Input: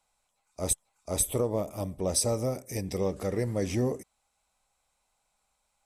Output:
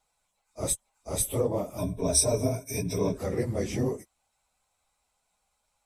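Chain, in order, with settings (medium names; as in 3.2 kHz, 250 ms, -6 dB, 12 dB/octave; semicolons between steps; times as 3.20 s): phase randomisation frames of 50 ms; 1.78–3.18 s: rippled EQ curve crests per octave 1.6, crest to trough 16 dB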